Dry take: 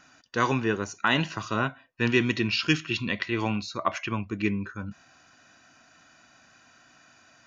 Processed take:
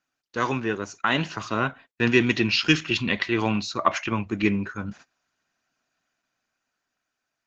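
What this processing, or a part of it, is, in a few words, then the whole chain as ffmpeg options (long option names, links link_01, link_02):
video call: -af "highpass=frequency=110:poles=1,dynaudnorm=framelen=270:gausssize=11:maxgain=6dB,agate=range=-24dB:threshold=-44dB:ratio=16:detection=peak" -ar 48000 -c:a libopus -b:a 12k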